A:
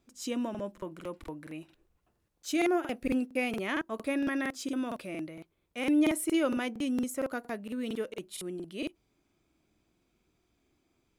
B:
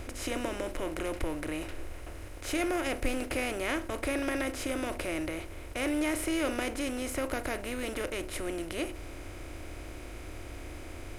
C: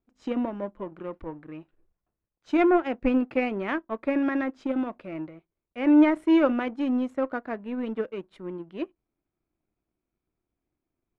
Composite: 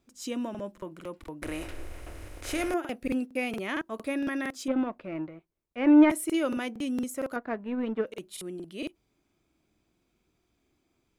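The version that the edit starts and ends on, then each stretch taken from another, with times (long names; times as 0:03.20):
A
0:01.42–0:02.74: punch in from B
0:04.68–0:06.10: punch in from C
0:07.36–0:08.06: punch in from C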